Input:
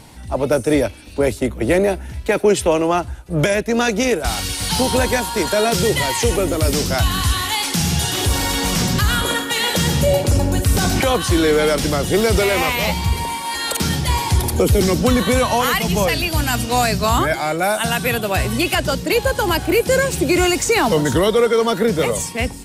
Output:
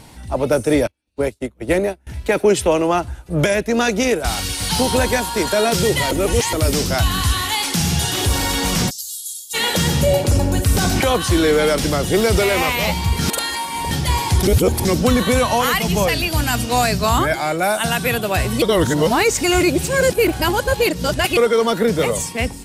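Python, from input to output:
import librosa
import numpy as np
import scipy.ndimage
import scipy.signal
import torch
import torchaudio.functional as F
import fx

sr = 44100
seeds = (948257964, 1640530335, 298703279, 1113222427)

y = fx.upward_expand(x, sr, threshold_db=-38.0, expansion=2.5, at=(0.87, 2.07))
y = fx.cheby2_highpass(y, sr, hz=2100.0, order=4, stop_db=50, at=(8.89, 9.53), fade=0.02)
y = fx.edit(y, sr, fx.reverse_span(start_s=6.11, length_s=0.42),
    fx.reverse_span(start_s=13.19, length_s=0.72),
    fx.reverse_span(start_s=14.43, length_s=0.42),
    fx.reverse_span(start_s=18.62, length_s=2.75), tone=tone)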